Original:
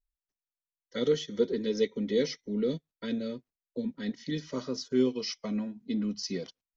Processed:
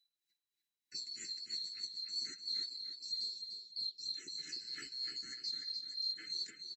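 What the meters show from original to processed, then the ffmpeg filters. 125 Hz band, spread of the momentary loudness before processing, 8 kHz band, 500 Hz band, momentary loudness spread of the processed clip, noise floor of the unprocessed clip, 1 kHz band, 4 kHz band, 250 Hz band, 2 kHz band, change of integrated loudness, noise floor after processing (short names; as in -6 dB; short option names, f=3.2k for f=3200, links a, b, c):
under -30 dB, 9 LU, n/a, under -40 dB, 5 LU, under -85 dBFS, under -15 dB, +4.0 dB, -35.0 dB, -9.0 dB, -8.0 dB, under -85 dBFS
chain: -filter_complex "[0:a]afftfilt=real='real(if(lt(b,736),b+184*(1-2*mod(floor(b/184),2)),b),0)':imag='imag(if(lt(b,736),b+184*(1-2*mod(floor(b/184),2)),b),0)':win_size=2048:overlap=0.75,highpass=56,lowshelf=f=110:g=-11.5,acompressor=threshold=-38dB:ratio=10,alimiter=level_in=13dB:limit=-24dB:level=0:latency=1:release=15,volume=-13dB,flanger=delay=5:depth=9.5:regen=16:speed=0.3:shape=sinusoidal,tremolo=f=3.1:d=0.61,flanger=delay=0.2:depth=4.1:regen=-88:speed=1.3:shape=triangular,asuperstop=centerf=800:order=12:qfactor=0.69,asplit=2[a][b];[b]adelay=297,lowpass=f=4.8k:p=1,volume=-4.5dB,asplit=2[c][d];[d]adelay=297,lowpass=f=4.8k:p=1,volume=0.39,asplit=2[e][f];[f]adelay=297,lowpass=f=4.8k:p=1,volume=0.39,asplit=2[g][h];[h]adelay=297,lowpass=f=4.8k:p=1,volume=0.39,asplit=2[i][j];[j]adelay=297,lowpass=f=4.8k:p=1,volume=0.39[k];[c][e][g][i][k]amix=inputs=5:normalize=0[l];[a][l]amix=inputs=2:normalize=0,volume=13dB"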